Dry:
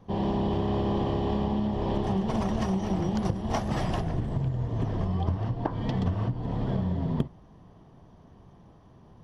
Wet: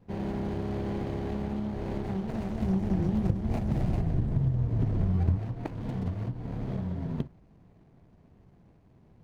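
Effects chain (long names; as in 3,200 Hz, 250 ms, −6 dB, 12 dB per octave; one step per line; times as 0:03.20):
running median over 41 samples
0:02.62–0:05.40: low-shelf EQ 290 Hz +8 dB
level −4.5 dB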